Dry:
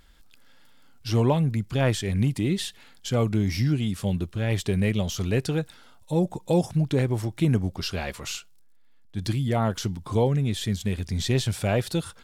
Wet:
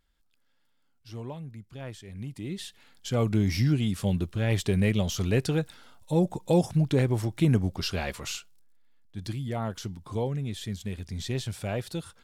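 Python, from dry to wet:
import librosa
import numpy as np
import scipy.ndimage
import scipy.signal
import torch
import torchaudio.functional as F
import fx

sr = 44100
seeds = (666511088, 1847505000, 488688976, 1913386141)

y = fx.gain(x, sr, db=fx.line((2.09, -17.0), (2.62, -8.5), (3.37, -0.5), (8.11, -0.5), (9.3, -7.5)))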